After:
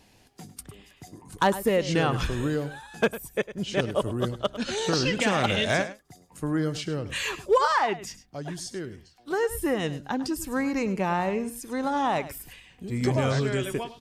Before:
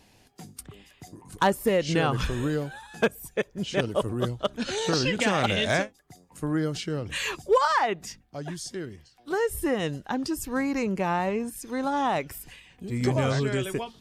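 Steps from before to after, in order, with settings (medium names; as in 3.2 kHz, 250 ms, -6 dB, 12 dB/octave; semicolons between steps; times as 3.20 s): delay 103 ms -14.5 dB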